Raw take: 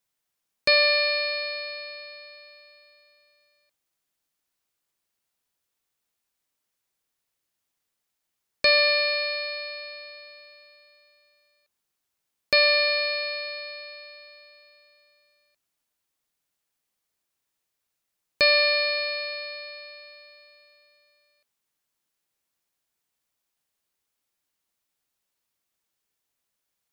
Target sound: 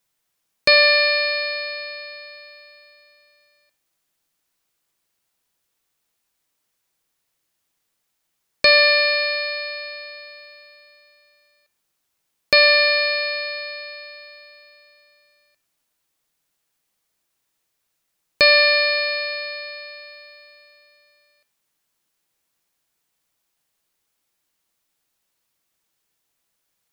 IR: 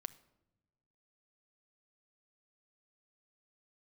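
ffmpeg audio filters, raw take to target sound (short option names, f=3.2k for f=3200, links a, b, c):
-filter_complex "[0:a]asplit=2[a][b];[1:a]atrim=start_sample=2205[c];[b][c]afir=irnorm=-1:irlink=0,volume=13dB[d];[a][d]amix=inputs=2:normalize=0,volume=-5.5dB"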